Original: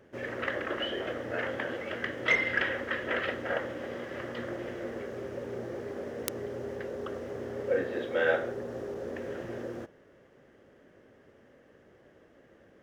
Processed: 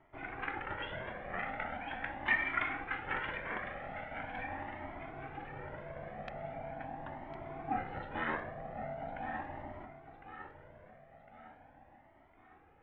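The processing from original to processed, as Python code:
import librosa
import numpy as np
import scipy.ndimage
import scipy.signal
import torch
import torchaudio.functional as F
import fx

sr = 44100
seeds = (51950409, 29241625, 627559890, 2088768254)

y = scipy.signal.sosfilt(scipy.signal.butter(4, 2600.0, 'lowpass', fs=sr, output='sos'), x)
y = y * np.sin(2.0 * np.pi * 260.0 * np.arange(len(y)) / sr)
y = fx.low_shelf(y, sr, hz=380.0, db=-6.5)
y = fx.echo_feedback(y, sr, ms=1056, feedback_pct=47, wet_db=-11.0)
y = fx.comb_cascade(y, sr, direction='rising', hz=0.41)
y = y * librosa.db_to_amplitude(3.0)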